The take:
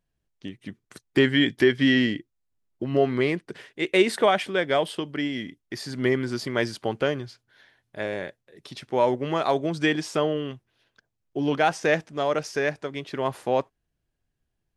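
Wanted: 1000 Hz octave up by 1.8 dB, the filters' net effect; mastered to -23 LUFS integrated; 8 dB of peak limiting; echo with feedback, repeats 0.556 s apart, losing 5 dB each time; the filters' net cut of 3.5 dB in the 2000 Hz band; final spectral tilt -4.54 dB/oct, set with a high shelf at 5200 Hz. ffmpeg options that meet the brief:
-af "equalizer=f=1k:t=o:g=3.5,equalizer=f=2k:t=o:g=-4.5,highshelf=f=5.2k:g=-5,alimiter=limit=-15dB:level=0:latency=1,aecho=1:1:556|1112|1668|2224|2780|3336|3892:0.562|0.315|0.176|0.0988|0.0553|0.031|0.0173,volume=4.5dB"

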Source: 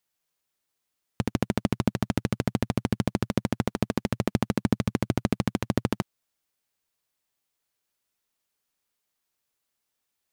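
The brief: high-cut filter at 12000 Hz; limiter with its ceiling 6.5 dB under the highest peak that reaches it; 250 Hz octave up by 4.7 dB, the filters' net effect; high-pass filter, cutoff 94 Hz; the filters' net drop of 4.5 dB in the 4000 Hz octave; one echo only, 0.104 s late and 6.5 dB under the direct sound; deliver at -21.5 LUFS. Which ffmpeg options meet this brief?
-af "highpass=94,lowpass=12k,equalizer=f=250:t=o:g=6,equalizer=f=4k:t=o:g=-6,alimiter=limit=-12dB:level=0:latency=1,aecho=1:1:104:0.473,volume=6dB"

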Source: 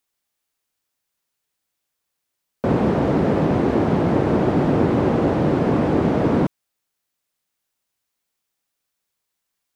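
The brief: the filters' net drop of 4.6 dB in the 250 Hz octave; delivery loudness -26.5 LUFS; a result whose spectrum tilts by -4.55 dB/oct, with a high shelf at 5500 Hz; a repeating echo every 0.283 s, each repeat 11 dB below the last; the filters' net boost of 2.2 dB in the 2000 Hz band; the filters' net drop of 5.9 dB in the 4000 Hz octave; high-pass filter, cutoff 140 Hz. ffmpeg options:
-af "highpass=140,equalizer=f=250:t=o:g=-5.5,equalizer=f=2k:t=o:g=5.5,equalizer=f=4k:t=o:g=-8.5,highshelf=f=5.5k:g=-7,aecho=1:1:283|566|849:0.282|0.0789|0.0221,volume=-4.5dB"

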